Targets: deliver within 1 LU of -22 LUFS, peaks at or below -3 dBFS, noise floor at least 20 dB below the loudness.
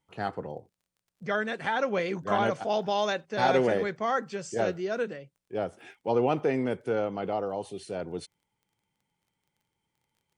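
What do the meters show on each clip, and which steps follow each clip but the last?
tick rate 17 per s; loudness -29.5 LUFS; peak level -11.5 dBFS; loudness target -22.0 LUFS
-> de-click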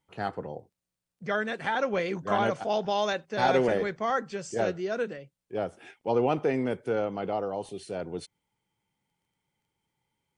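tick rate 0 per s; loudness -29.5 LUFS; peak level -11.5 dBFS; loudness target -22.0 LUFS
-> trim +7.5 dB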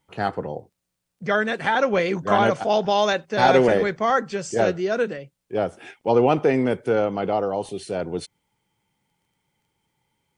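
loudness -22.0 LUFS; peak level -4.0 dBFS; noise floor -80 dBFS

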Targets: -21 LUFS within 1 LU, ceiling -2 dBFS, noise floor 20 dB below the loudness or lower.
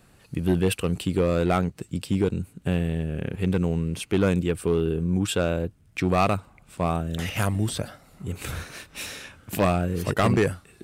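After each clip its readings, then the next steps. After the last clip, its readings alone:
clipped samples 0.8%; clipping level -14.0 dBFS; loudness -26.0 LUFS; peak level -14.0 dBFS; loudness target -21.0 LUFS
-> clip repair -14 dBFS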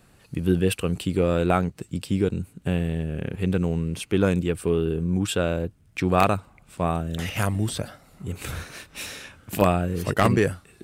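clipped samples 0.0%; loudness -25.0 LUFS; peak level -5.0 dBFS; loudness target -21.0 LUFS
-> trim +4 dB; peak limiter -2 dBFS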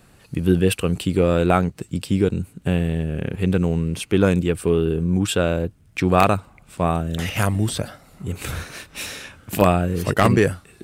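loudness -21.0 LUFS; peak level -2.0 dBFS; noise floor -53 dBFS

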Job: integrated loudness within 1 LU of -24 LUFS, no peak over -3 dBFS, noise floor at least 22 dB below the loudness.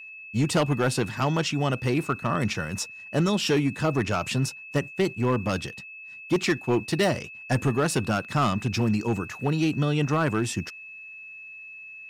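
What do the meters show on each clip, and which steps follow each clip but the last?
clipped samples 1.3%; clipping level -16.5 dBFS; steady tone 2.6 kHz; tone level -40 dBFS; loudness -26.0 LUFS; peak level -16.5 dBFS; loudness target -24.0 LUFS
-> clip repair -16.5 dBFS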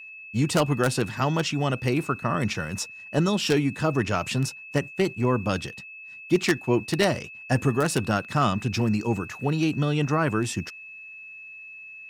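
clipped samples 0.0%; steady tone 2.6 kHz; tone level -40 dBFS
-> band-stop 2.6 kHz, Q 30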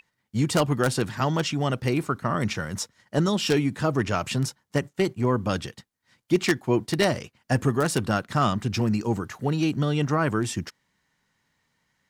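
steady tone not found; loudness -25.5 LUFS; peak level -7.5 dBFS; loudness target -24.0 LUFS
-> trim +1.5 dB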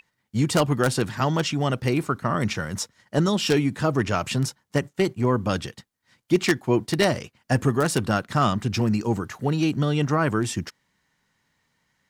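loudness -24.0 LUFS; peak level -6.0 dBFS; noise floor -75 dBFS

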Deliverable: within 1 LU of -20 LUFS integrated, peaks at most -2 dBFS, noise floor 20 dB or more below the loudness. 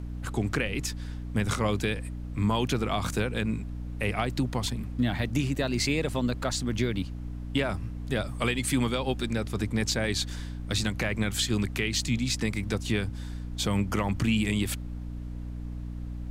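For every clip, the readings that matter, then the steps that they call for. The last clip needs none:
hum 60 Hz; highest harmonic 300 Hz; hum level -34 dBFS; noise floor -37 dBFS; noise floor target -50 dBFS; loudness -29.5 LUFS; peak level -13.5 dBFS; loudness target -20.0 LUFS
-> hum notches 60/120/180/240/300 Hz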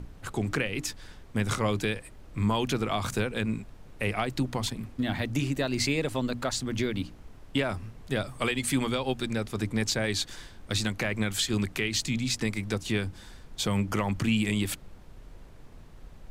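hum not found; noise floor -49 dBFS; noise floor target -50 dBFS
-> noise print and reduce 6 dB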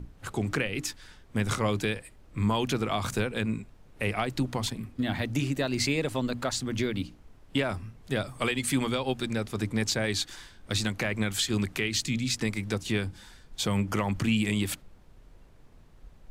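noise floor -54 dBFS; loudness -30.0 LUFS; peak level -14.0 dBFS; loudness target -20.0 LUFS
-> trim +10 dB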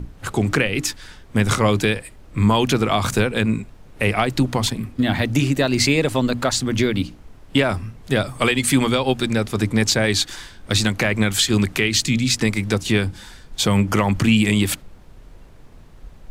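loudness -20.0 LUFS; peak level -4.0 dBFS; noise floor -44 dBFS

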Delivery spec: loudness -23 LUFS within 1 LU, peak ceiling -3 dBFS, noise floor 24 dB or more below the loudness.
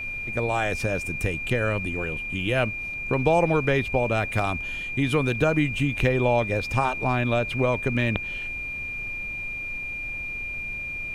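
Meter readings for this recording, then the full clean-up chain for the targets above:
steady tone 2.4 kHz; tone level -30 dBFS; noise floor -33 dBFS; noise floor target -50 dBFS; loudness -25.5 LUFS; peak level -6.0 dBFS; loudness target -23.0 LUFS
-> band-stop 2.4 kHz, Q 30; noise print and reduce 17 dB; trim +2.5 dB

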